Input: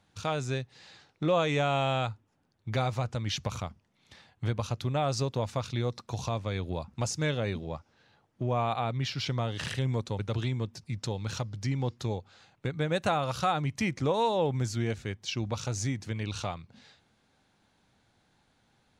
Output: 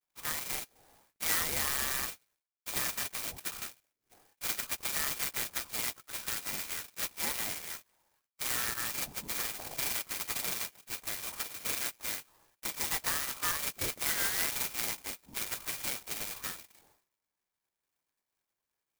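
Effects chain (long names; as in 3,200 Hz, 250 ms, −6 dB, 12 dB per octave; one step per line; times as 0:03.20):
pitch-shifted copies added +3 semitones −9 dB
frequency shifter +95 Hz
downward expander −58 dBFS
voice inversion scrambler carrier 2,600 Hz
converter with an unsteady clock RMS 0.12 ms
level −5.5 dB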